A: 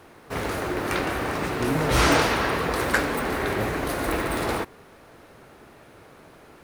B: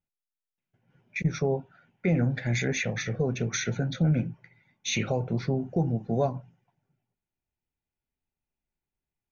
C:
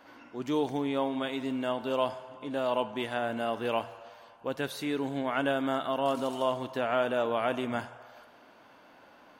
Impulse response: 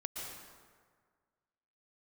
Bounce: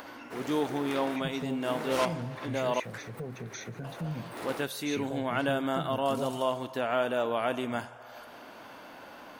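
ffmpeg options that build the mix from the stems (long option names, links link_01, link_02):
-filter_complex "[0:a]highpass=210,volume=-12dB[link_01];[1:a]volume=-12dB,asplit=2[link_02][link_03];[2:a]highshelf=frequency=8100:gain=7.5,acompressor=mode=upward:threshold=-37dB:ratio=2.5,volume=-0.5dB,asplit=3[link_04][link_05][link_06];[link_04]atrim=end=2.8,asetpts=PTS-STARTPTS,afade=type=out:start_time=2.796:duration=0.004:curve=hsin[link_07];[link_05]atrim=start=2.8:end=3.84,asetpts=PTS-STARTPTS,volume=0[link_08];[link_06]atrim=start=3.84,asetpts=PTS-STARTPTS,afade=type=in:duration=0.004:curve=hsin[link_09];[link_07][link_08][link_09]concat=n=3:v=0:a=1[link_10];[link_03]apad=whole_len=292755[link_11];[link_01][link_11]sidechaincompress=threshold=-54dB:ratio=8:attack=45:release=112[link_12];[link_12][link_02][link_10]amix=inputs=3:normalize=0"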